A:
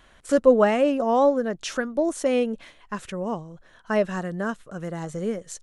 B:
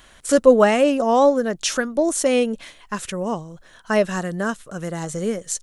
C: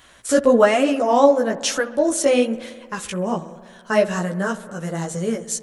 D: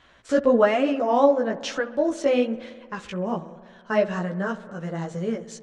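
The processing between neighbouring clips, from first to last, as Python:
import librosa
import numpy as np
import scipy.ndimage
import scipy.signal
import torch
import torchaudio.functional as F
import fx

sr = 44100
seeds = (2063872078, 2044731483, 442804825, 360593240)

y1 = fx.high_shelf(x, sr, hz=4000.0, db=11.0)
y1 = y1 * librosa.db_to_amplitude(3.5)
y2 = fx.highpass(y1, sr, hz=46.0, slope=6)
y2 = fx.chorus_voices(y2, sr, voices=2, hz=1.1, base_ms=14, depth_ms=3.9, mix_pct=45)
y2 = fx.echo_wet_lowpass(y2, sr, ms=66, feedback_pct=78, hz=1900.0, wet_db=-18.0)
y2 = y2 * librosa.db_to_amplitude(3.5)
y3 = fx.air_absorb(y2, sr, metres=160.0)
y3 = y3 * librosa.db_to_amplitude(-3.5)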